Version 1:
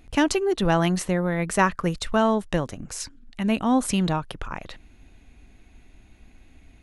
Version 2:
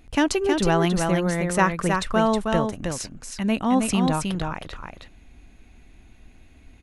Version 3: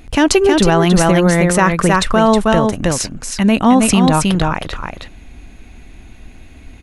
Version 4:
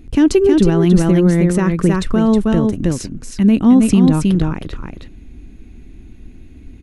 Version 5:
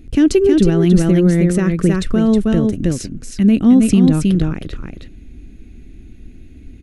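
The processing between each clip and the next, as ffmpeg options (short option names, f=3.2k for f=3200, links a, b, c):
-af "aecho=1:1:317:0.596"
-af "alimiter=level_in=13dB:limit=-1dB:release=50:level=0:latency=1,volume=-1dB"
-af "lowshelf=f=480:t=q:w=1.5:g=10,volume=-10dB"
-af "equalizer=f=960:t=o:w=0.55:g=-10.5"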